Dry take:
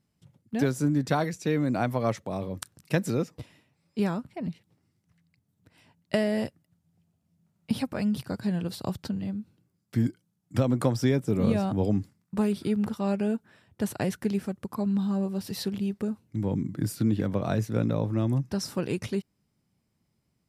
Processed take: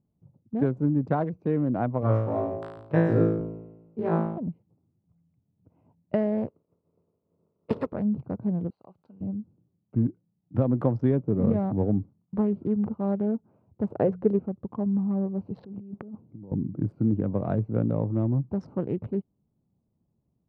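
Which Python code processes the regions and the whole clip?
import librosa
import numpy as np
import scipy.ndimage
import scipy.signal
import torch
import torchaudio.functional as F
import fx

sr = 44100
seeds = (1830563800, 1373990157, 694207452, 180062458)

y = fx.chain(x, sr, fx.peak_eq(hz=200.0, db=-12.5, octaves=0.26),
    fx.room_flutter(wall_m=3.1, rt60_s=1.0), at=(2.01, 4.38))
y = fx.spec_flatten(y, sr, power=0.41, at=(6.46, 7.92), fade=0.02)
y = fx.peak_eq(y, sr, hz=440.0, db=10.5, octaves=0.51, at=(6.46, 7.92), fade=0.02)
y = fx.notch_comb(y, sr, f0_hz=770.0, at=(6.46, 7.92), fade=0.02)
y = fx.chain(y, sr, fx.differentiator(),
    fx.env_flatten(amount_pct=50), at=(8.7, 9.21))
y = fx.chain(y, sr, fx.peak_eq(hz=480.0, db=11.5, octaves=0.8),
    fx.hum_notches(base_hz=60, count=3), at=(13.9, 14.39))
y = fx.chain(y, sr, fx.over_compress(threshold_db=-40.0, ratio=-1.0),
    fx.bandpass_edges(low_hz=110.0, high_hz=4300.0), at=(15.58, 16.52))
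y = fx.wiener(y, sr, points=25)
y = scipy.signal.sosfilt(scipy.signal.butter(2, 1100.0, 'lowpass', fs=sr, output='sos'), y)
y = y * librosa.db_to_amplitude(1.0)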